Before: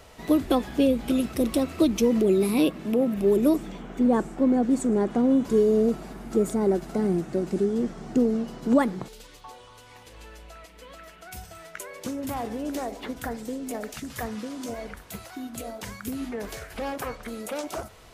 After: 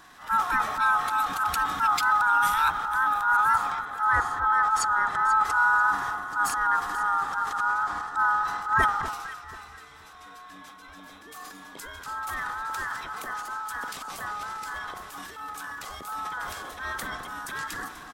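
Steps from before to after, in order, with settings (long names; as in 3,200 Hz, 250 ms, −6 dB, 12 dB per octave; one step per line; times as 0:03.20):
neighbouring bands swapped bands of 1,000 Hz
pitch-shifted copies added −7 semitones −6 dB
transient designer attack −7 dB, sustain +8 dB
delay that swaps between a low-pass and a high-pass 244 ms, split 1,300 Hz, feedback 52%, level −9 dB
level −2.5 dB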